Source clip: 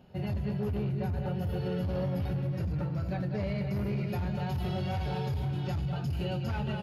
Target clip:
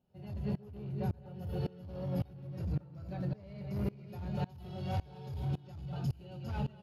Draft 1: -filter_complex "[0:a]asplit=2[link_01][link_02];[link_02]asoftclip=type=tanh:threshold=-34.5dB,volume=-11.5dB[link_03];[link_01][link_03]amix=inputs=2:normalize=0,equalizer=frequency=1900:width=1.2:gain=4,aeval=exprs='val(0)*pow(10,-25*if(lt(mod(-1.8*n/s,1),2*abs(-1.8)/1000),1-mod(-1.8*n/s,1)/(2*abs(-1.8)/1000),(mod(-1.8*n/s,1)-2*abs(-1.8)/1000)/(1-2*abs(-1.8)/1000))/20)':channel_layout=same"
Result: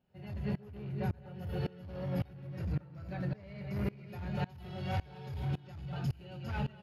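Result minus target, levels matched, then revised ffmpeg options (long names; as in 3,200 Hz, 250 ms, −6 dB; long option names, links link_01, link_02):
2,000 Hz band +7.0 dB
-filter_complex "[0:a]asplit=2[link_01][link_02];[link_02]asoftclip=type=tanh:threshold=-34.5dB,volume=-11.5dB[link_03];[link_01][link_03]amix=inputs=2:normalize=0,equalizer=frequency=1900:width=1.2:gain=-5.5,aeval=exprs='val(0)*pow(10,-25*if(lt(mod(-1.8*n/s,1),2*abs(-1.8)/1000),1-mod(-1.8*n/s,1)/(2*abs(-1.8)/1000),(mod(-1.8*n/s,1)-2*abs(-1.8)/1000)/(1-2*abs(-1.8)/1000))/20)':channel_layout=same"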